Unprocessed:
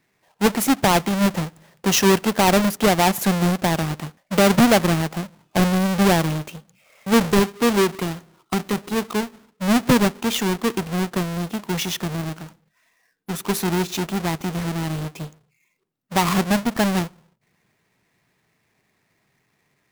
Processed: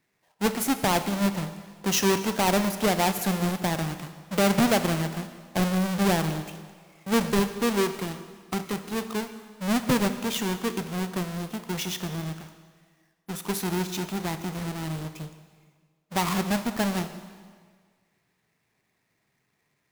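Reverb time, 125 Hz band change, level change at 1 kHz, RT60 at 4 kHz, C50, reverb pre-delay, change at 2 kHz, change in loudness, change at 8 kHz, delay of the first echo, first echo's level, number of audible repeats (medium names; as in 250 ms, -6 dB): 1.7 s, -6.5 dB, -6.5 dB, 1.6 s, 10.5 dB, 19 ms, -6.5 dB, -6.5 dB, -5.0 dB, no echo, no echo, no echo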